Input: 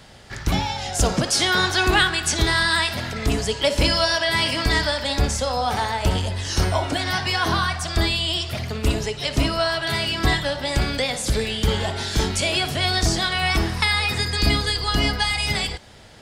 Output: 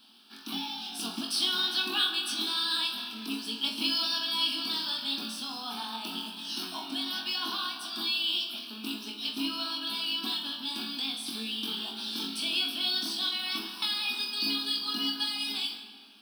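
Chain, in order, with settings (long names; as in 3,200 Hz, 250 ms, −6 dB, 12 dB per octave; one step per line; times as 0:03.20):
flat-topped bell 850 Hz −9.5 dB 2.8 octaves
in parallel at −8 dB: log-companded quantiser 4 bits
on the sum: linear-phase brick-wall high-pass 210 Hz
phaser with its sweep stopped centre 2,000 Hz, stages 6
flutter between parallel walls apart 3.8 metres, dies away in 0.28 s
on a send at −10 dB: convolution reverb RT60 1.9 s, pre-delay 110 ms
on the sum: level −8.5 dB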